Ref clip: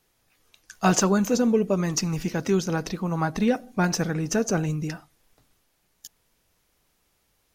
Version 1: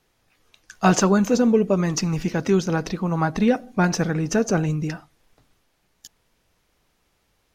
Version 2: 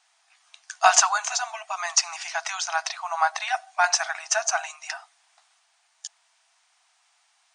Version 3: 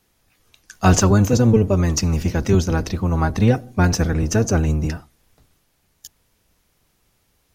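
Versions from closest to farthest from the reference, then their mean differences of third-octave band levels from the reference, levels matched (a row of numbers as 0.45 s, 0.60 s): 1, 3, 2; 1.5 dB, 4.5 dB, 16.0 dB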